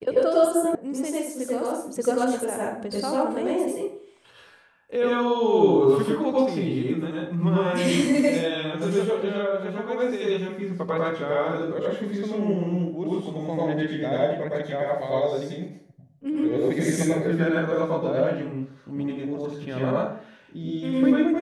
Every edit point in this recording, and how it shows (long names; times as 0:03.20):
0:00.75: cut off before it has died away